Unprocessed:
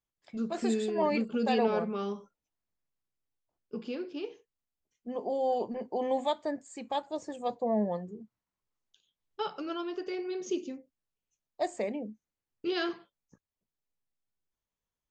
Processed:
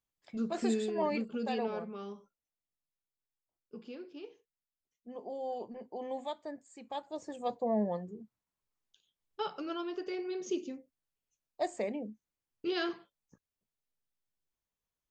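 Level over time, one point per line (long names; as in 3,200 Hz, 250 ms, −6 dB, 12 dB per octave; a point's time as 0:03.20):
0:00.62 −1 dB
0:01.84 −9 dB
0:06.79 −9 dB
0:07.40 −2 dB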